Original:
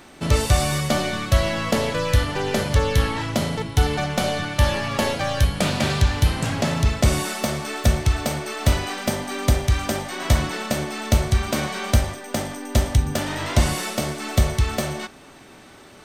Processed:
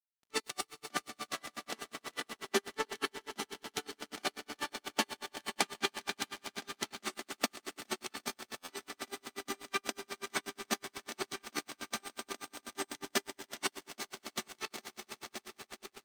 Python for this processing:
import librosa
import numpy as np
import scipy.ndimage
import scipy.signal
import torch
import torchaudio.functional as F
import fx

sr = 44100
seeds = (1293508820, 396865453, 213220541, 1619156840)

y = fx.rider(x, sr, range_db=5, speed_s=2.0)
y = fx.high_shelf(y, sr, hz=6600.0, db=-6.0)
y = fx.level_steps(y, sr, step_db=22)
y = scipy.signal.sosfilt(scipy.signal.butter(4, 280.0, 'highpass', fs=sr, output='sos'), y)
y = fx.peak_eq(y, sr, hz=560.0, db=-14.0, octaves=0.68)
y = fx.comb_fb(y, sr, f0_hz=400.0, decay_s=0.28, harmonics='all', damping=0.0, mix_pct=80)
y = fx.echo_swell(y, sr, ms=95, loudest=5, wet_db=-12)
y = np.sign(y) * np.maximum(np.abs(y) - 10.0 ** (-56.0 / 20.0), 0.0)
y = fx.buffer_glitch(y, sr, at_s=(8.58,), block=512, repeats=8)
y = y * 10.0 ** (-40 * (0.5 - 0.5 * np.cos(2.0 * np.pi * 8.2 * np.arange(len(y)) / sr)) / 20.0)
y = y * 10.0 ** (15.0 / 20.0)